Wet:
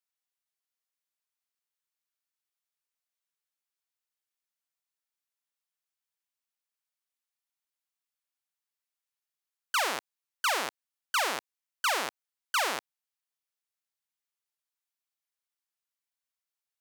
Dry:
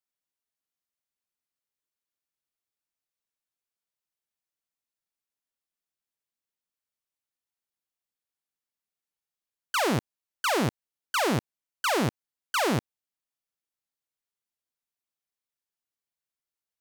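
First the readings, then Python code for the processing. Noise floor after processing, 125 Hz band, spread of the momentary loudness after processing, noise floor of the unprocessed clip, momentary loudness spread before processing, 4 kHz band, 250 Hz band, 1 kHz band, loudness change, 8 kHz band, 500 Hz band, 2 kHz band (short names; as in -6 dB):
under -85 dBFS, under -25 dB, 9 LU, under -85 dBFS, 5 LU, 0.0 dB, -19.0 dB, -2.0 dB, -2.5 dB, 0.0 dB, -8.0 dB, 0.0 dB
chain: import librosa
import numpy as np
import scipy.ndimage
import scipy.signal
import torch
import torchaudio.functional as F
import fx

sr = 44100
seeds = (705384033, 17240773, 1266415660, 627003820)

y = scipy.signal.sosfilt(scipy.signal.butter(2, 810.0, 'highpass', fs=sr, output='sos'), x)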